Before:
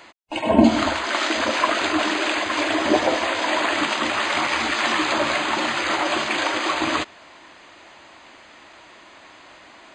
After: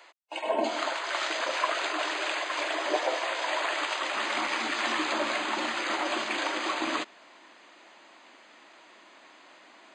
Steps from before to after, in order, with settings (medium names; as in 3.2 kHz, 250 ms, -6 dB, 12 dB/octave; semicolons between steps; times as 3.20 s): high-pass 410 Hz 24 dB/octave, from 4.14 s 200 Hz; trim -7.5 dB